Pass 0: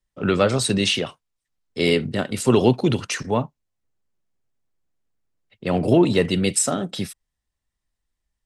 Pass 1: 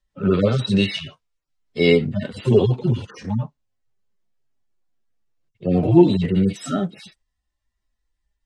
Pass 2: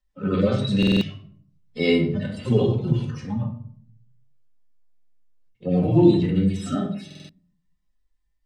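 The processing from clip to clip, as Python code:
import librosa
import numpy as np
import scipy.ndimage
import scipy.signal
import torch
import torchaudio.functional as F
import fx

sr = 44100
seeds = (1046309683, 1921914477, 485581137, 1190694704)

y1 = fx.hpss_only(x, sr, part='harmonic')
y1 = scipy.signal.sosfilt(scipy.signal.butter(2, 7000.0, 'lowpass', fs=sr, output='sos'), y1)
y1 = y1 * 10.0 ** (5.0 / 20.0)
y2 = fx.room_shoebox(y1, sr, seeds[0], volume_m3=740.0, walls='furnished', distance_m=2.0)
y2 = fx.buffer_glitch(y2, sr, at_s=(0.78, 4.93, 7.06), block=2048, repeats=4)
y2 = y2 * 10.0 ** (-5.5 / 20.0)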